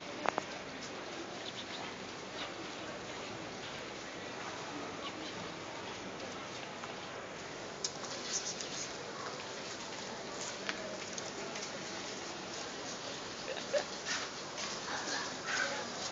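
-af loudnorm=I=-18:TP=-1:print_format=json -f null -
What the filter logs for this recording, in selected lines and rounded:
"input_i" : "-39.9",
"input_tp" : "-10.3",
"input_lra" : "5.1",
"input_thresh" : "-49.9",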